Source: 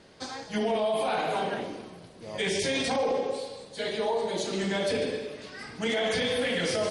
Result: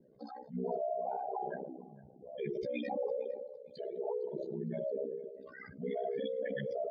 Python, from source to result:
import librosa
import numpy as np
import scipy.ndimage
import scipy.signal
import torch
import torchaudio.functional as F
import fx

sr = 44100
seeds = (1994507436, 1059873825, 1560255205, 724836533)

y = fx.spec_expand(x, sr, power=3.8)
y = fx.echo_feedback(y, sr, ms=457, feedback_pct=26, wet_db=-22.0)
y = y * np.sin(2.0 * np.pi * 32.0 * np.arange(len(y)) / sr)
y = y * librosa.db_to_amplitude(-5.0)